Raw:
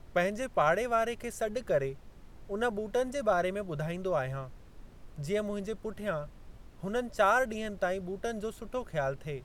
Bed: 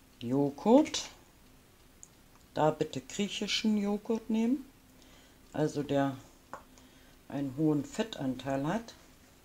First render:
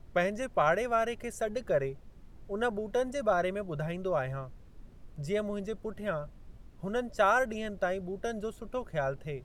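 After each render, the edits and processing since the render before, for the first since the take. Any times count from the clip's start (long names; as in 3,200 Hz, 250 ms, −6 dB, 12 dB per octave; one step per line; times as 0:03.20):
broadband denoise 6 dB, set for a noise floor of −52 dBFS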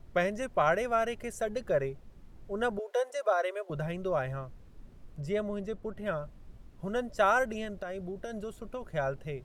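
0:02.79–0:03.70: Butterworth high-pass 400 Hz 48 dB per octave
0:05.20–0:06.06: high-shelf EQ 4,000 Hz −7 dB
0:07.64–0:08.95: downward compressor 10 to 1, threshold −33 dBFS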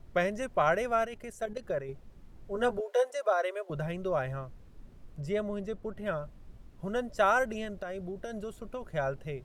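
0:01.05–0:01.89: output level in coarse steps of 10 dB
0:02.54–0:03.07: double-tracking delay 12 ms −4.5 dB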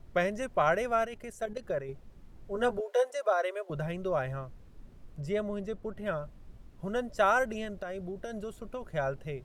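no processing that can be heard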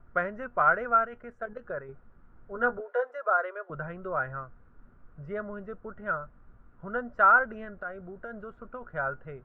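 low-pass with resonance 1,400 Hz, resonance Q 5.8
tuned comb filter 240 Hz, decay 0.15 s, harmonics all, mix 50%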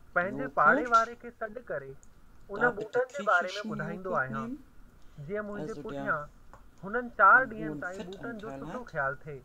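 mix in bed −9.5 dB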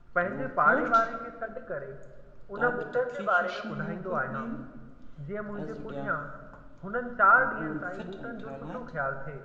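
high-frequency loss of the air 130 metres
rectangular room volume 1,400 cubic metres, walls mixed, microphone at 0.85 metres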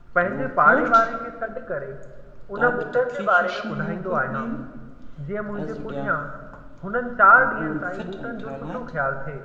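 level +7 dB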